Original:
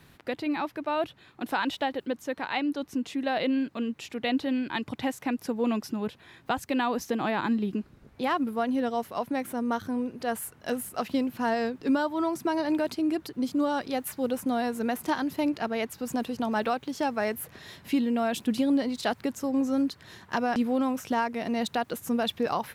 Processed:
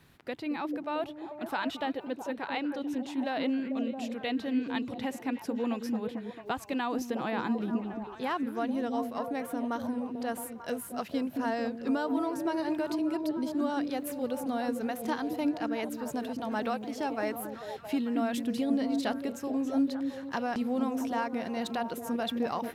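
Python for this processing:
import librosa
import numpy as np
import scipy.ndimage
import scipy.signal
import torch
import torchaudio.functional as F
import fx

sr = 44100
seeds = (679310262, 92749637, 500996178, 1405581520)

y = fx.echo_stepped(x, sr, ms=222, hz=270.0, octaves=0.7, feedback_pct=70, wet_db=-2.0)
y = y * librosa.db_to_amplitude(-5.0)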